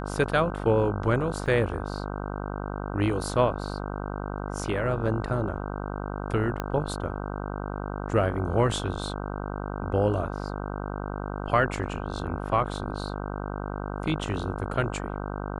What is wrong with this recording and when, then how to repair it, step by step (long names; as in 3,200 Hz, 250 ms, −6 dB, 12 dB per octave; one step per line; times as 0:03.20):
mains buzz 50 Hz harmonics 31 −33 dBFS
0:01.46: drop-out 4.2 ms
0:06.60: click −15 dBFS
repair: click removal
hum removal 50 Hz, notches 31
repair the gap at 0:01.46, 4.2 ms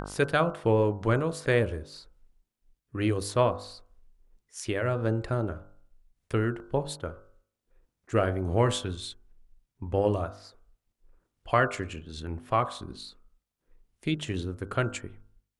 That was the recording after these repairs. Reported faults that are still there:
0:06.60: click